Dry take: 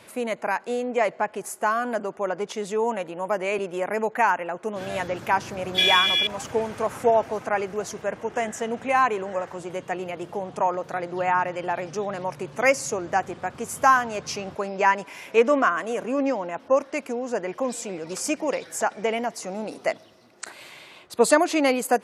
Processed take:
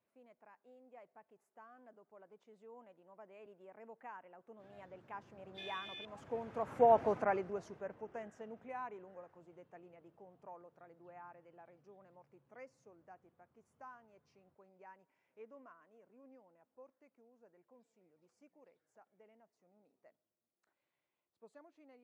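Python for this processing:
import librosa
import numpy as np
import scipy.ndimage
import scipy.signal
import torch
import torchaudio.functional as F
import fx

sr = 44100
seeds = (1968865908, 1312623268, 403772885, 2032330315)

y = fx.doppler_pass(x, sr, speed_mps=12, closest_m=2.4, pass_at_s=7.06)
y = fx.lowpass(y, sr, hz=1200.0, slope=6)
y = y * 10.0 ** (-3.5 / 20.0)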